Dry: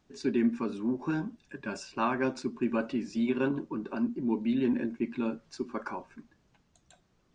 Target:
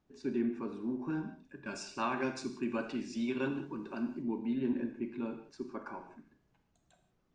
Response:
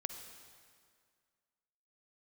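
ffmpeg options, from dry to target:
-filter_complex "[0:a]asetnsamples=n=441:p=0,asendcmd='1.66 highshelf g 6.5;4.22 highshelf g -6.5',highshelf=f=2.3k:g=-8[a];[1:a]atrim=start_sample=2205,afade=t=out:st=0.38:d=0.01,atrim=end_sample=17199,asetrate=74970,aresample=44100[b];[a][b]afir=irnorm=-1:irlink=0"

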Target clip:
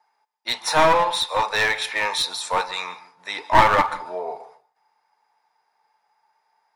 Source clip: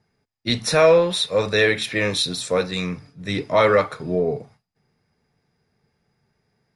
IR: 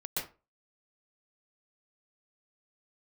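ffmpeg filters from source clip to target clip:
-filter_complex "[0:a]highpass=f=890:t=q:w=8.6,aeval=exprs='clip(val(0),-1,0.15)':c=same,asplit=2[a][b];[1:a]atrim=start_sample=2205,asetrate=37485,aresample=44100[c];[b][c]afir=irnorm=-1:irlink=0,volume=-21dB[d];[a][d]amix=inputs=2:normalize=0,volume=-1.5dB"

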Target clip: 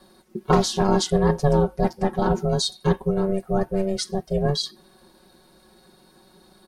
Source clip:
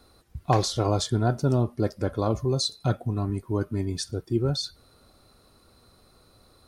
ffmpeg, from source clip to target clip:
-af "aeval=exprs='val(0)*sin(2*PI*290*n/s)':c=same,aecho=1:1:5.4:0.94,volume=3.5dB"

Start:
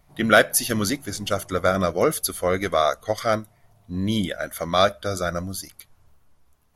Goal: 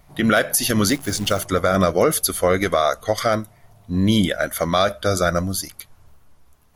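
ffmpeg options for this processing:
-filter_complex "[0:a]alimiter=limit=-14dB:level=0:latency=1:release=76,asettb=1/sr,asplit=3[a][b][c];[a]atrim=end=0.894[d];[b]atrim=start=0.89:end=1.45,asetpts=PTS-STARTPTS,afade=t=in:d=0.004:c=qsin,afade=t=out:st=0.556:d=0.004:c=qsin,acrusher=bits=8:dc=4:mix=0:aa=0.000001[e];[c]atrim=start=1.446[f];[d][e]acrossfade=d=0.004:c1=hsin:c2=qsin[g];[g][f]acrossfade=d=0.004:c1=qsin:c2=hsin,volume=7dB"

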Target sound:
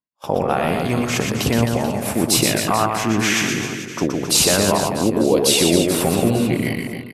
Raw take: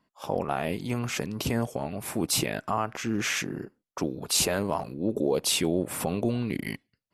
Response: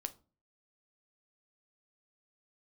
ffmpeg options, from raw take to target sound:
-af "agate=range=-33dB:threshold=-36dB:ratio=3:detection=peak,aecho=1:1:120|264|436.8|644.2|893:0.631|0.398|0.251|0.158|0.1,volume=8.5dB"

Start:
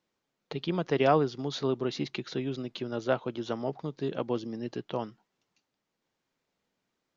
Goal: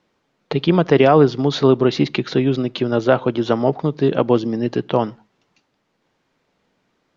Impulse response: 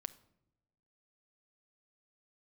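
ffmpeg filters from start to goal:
-filter_complex "[0:a]aemphasis=mode=reproduction:type=50fm,asplit=2[a][b];[1:a]atrim=start_sample=2205,afade=t=out:st=0.21:d=0.01,atrim=end_sample=9702,asetrate=40131,aresample=44100[c];[b][c]afir=irnorm=-1:irlink=0,volume=-8dB[d];[a][d]amix=inputs=2:normalize=0,alimiter=level_in=14dB:limit=-1dB:release=50:level=0:latency=1,volume=-1dB"

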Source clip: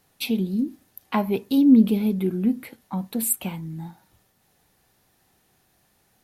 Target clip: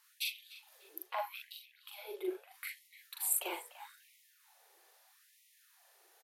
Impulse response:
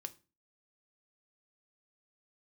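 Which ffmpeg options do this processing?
-filter_complex "[0:a]areverse,acompressor=threshold=-28dB:ratio=10,areverse,asplit=2[a][b];[b]adelay=41,volume=-2dB[c];[a][c]amix=inputs=2:normalize=0,asplit=2[d][e];[e]adelay=296,lowpass=f=3.8k:p=1,volume=-14.5dB,asplit=2[f][g];[g]adelay=296,lowpass=f=3.8k:p=1,volume=0.37,asplit=2[h][i];[i]adelay=296,lowpass=f=3.8k:p=1,volume=0.37[j];[d][f][h][j]amix=inputs=4:normalize=0,afftfilt=real='re*gte(b*sr/1024,330*pow(1900/330,0.5+0.5*sin(2*PI*0.78*pts/sr)))':imag='im*gte(b*sr/1024,330*pow(1900/330,0.5+0.5*sin(2*PI*0.78*pts/sr)))':win_size=1024:overlap=0.75,volume=-2dB"

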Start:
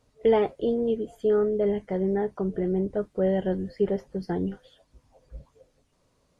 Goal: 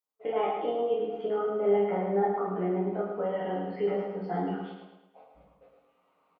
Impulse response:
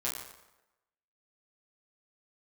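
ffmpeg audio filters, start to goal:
-filter_complex "[0:a]highpass=340,equalizer=f=350:t=q:w=4:g=-6,equalizer=f=530:t=q:w=4:g=-7,equalizer=f=770:t=q:w=4:g=7,equalizer=f=1.2k:t=q:w=4:g=9,equalizer=f=1.7k:t=q:w=4:g=-7,equalizer=f=2.5k:t=q:w=4:g=4,lowpass=f=2.9k:w=0.5412,lowpass=f=2.9k:w=1.3066,agate=range=-35dB:threshold=-57dB:ratio=16:detection=peak,asplit=2[a][b];[b]acompressor=threshold=-39dB:ratio=6,volume=2dB[c];[a][c]amix=inputs=2:normalize=0,alimiter=limit=-21dB:level=0:latency=1,areverse,acompressor=mode=upward:threshold=-49dB:ratio=2.5,areverse,aecho=1:1:108|216|324|432|540|648:0.562|0.264|0.124|0.0584|0.0274|0.0129[d];[1:a]atrim=start_sample=2205,afade=t=out:st=0.13:d=0.01,atrim=end_sample=6174,asetrate=40131,aresample=44100[e];[d][e]afir=irnorm=-1:irlink=0,volume=-4dB" -ar 44100 -c:a nellymoser

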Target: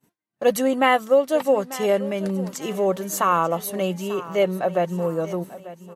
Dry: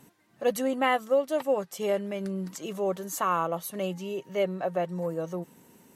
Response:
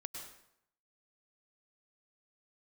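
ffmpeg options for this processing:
-filter_complex "[0:a]agate=range=-33dB:threshold=-45dB:ratio=3:detection=peak,asplit=2[a][b];[b]aecho=0:1:892|1784|2676:0.15|0.0598|0.0239[c];[a][c]amix=inputs=2:normalize=0,volume=7dB"

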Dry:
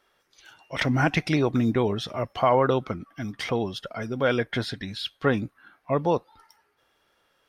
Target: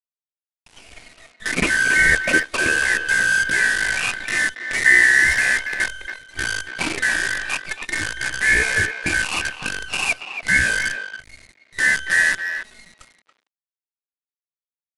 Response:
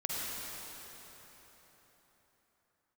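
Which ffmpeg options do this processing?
-filter_complex "[0:a]afftfilt=real='real(if(lt(b,272),68*(eq(floor(b/68),0)*1+eq(floor(b/68),1)*3+eq(floor(b/68),2)*0+eq(floor(b/68),3)*2)+mod(b,68),b),0)':imag='imag(if(lt(b,272),68*(eq(floor(b/68),0)*1+eq(floor(b/68),1)*3+eq(floor(b/68),2)*0+eq(floor(b/68),3)*2)+mod(b,68),b),0)':win_size=2048:overlap=0.75,highshelf=f=2.6k:g=7,bandreject=f=3.3k:w=8.5,asplit=2[a][b];[b]acompressor=threshold=-35dB:ratio=5,volume=-2.5dB[c];[a][c]amix=inputs=2:normalize=0,acrusher=bits=5:dc=4:mix=0:aa=0.000001,asetrate=22050,aresample=44100,asplit=2[d][e];[e]adelay=280,highpass=300,lowpass=3.4k,asoftclip=type=hard:threshold=-14.5dB,volume=-8dB[f];[d][f]amix=inputs=2:normalize=0,volume=2.5dB"

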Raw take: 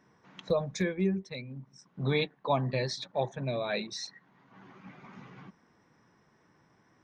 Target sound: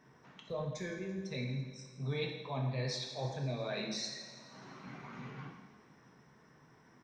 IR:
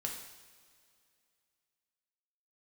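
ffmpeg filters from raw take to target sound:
-filter_complex "[0:a]areverse,acompressor=threshold=-38dB:ratio=6,areverse,aecho=1:1:168|336|504|672|840|1008:0.141|0.0833|0.0492|0.029|0.0171|0.0101[a];[1:a]atrim=start_sample=2205[b];[a][b]afir=irnorm=-1:irlink=0,volume=2dB"

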